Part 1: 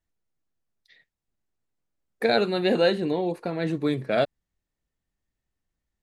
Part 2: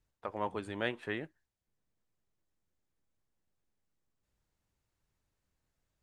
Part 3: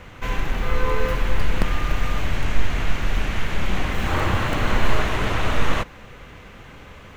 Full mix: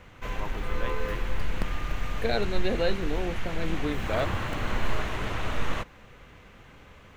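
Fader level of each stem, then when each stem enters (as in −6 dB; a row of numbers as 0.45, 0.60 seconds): −6.5, −4.5, −8.5 decibels; 0.00, 0.00, 0.00 seconds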